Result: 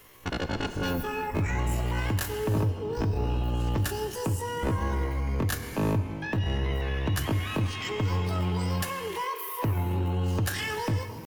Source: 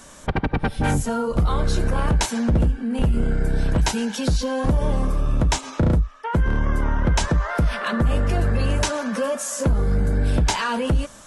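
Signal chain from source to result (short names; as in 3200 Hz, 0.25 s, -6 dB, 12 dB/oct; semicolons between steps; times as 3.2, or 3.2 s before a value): pitch shift +10.5 st; reverb, pre-delay 3 ms, DRR 8.5 dB; gain -8.5 dB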